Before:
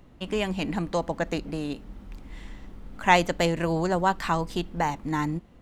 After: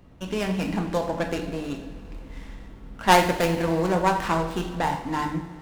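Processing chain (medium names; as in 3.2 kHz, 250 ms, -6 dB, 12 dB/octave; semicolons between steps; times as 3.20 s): tracing distortion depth 0.21 ms; two-slope reverb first 0.64 s, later 3.4 s, from -16 dB, DRR 2 dB; sliding maximum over 5 samples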